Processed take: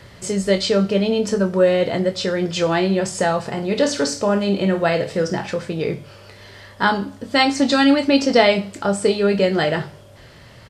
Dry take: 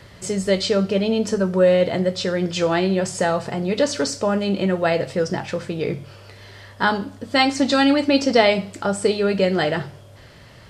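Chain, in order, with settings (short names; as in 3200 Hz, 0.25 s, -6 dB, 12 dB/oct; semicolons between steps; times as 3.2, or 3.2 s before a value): doubler 25 ms -10 dB; 3.5–5.53 flutter echo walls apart 9 m, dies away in 0.28 s; gain +1 dB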